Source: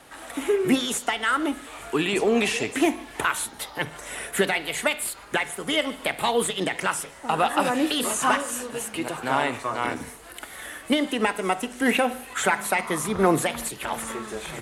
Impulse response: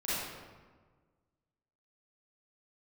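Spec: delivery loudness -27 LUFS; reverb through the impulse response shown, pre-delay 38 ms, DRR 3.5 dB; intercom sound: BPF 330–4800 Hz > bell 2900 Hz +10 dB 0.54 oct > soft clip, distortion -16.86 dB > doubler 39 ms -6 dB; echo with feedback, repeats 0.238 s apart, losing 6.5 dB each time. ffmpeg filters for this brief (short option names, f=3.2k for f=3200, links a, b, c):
-filter_complex "[0:a]aecho=1:1:238|476|714|952|1190|1428:0.473|0.222|0.105|0.0491|0.0231|0.0109,asplit=2[a][b];[1:a]atrim=start_sample=2205,adelay=38[c];[b][c]afir=irnorm=-1:irlink=0,volume=-10dB[d];[a][d]amix=inputs=2:normalize=0,highpass=330,lowpass=4.8k,equalizer=f=2.9k:t=o:w=0.54:g=10,asoftclip=threshold=-13.5dB,asplit=2[e][f];[f]adelay=39,volume=-6dB[g];[e][g]amix=inputs=2:normalize=0,volume=-5.5dB"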